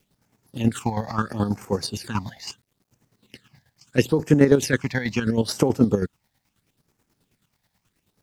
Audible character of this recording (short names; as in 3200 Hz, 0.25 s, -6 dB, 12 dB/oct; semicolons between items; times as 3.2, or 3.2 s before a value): phasing stages 8, 0.75 Hz, lowest notch 360–3800 Hz; a quantiser's noise floor 12-bit, dither none; chopped level 9.3 Hz, depth 60%, duty 35%